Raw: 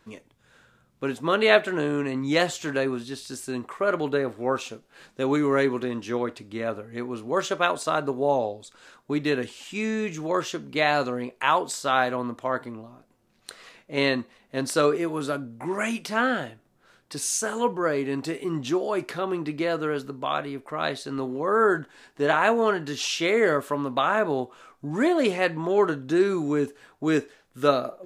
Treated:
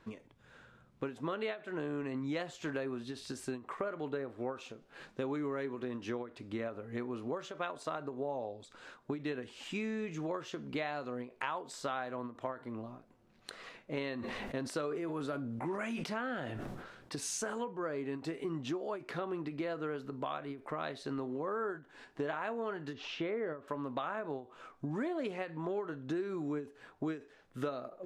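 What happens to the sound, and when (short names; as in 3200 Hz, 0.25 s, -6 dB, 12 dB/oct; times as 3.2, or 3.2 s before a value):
14.16–17.55 sustainer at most 48 dB/s
22.93–23.68 tape spacing loss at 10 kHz 31 dB
whole clip: LPF 2700 Hz 6 dB/oct; compressor 6:1, threshold -35 dBFS; ending taper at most 170 dB/s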